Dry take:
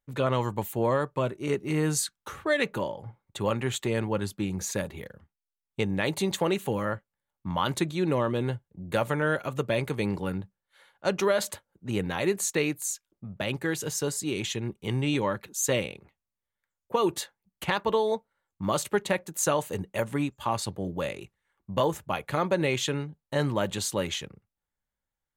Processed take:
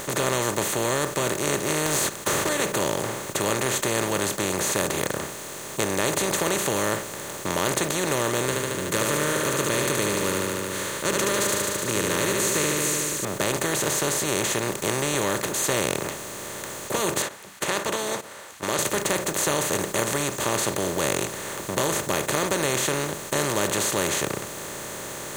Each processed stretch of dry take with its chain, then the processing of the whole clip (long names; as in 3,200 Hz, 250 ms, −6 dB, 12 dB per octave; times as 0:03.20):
0:01.86–0:02.49: downward compressor 5 to 1, threshold −31 dBFS + leveller curve on the samples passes 3
0:08.45–0:13.25: Butterworth band-reject 750 Hz, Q 1.3 + repeating echo 74 ms, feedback 52%, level −7 dB
0:17.22–0:18.79: resonant band-pass 2,000 Hz, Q 0.89 + noise gate −52 dBFS, range −30 dB
whole clip: compressor on every frequency bin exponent 0.2; high-shelf EQ 7,000 Hz +9 dB; level −8 dB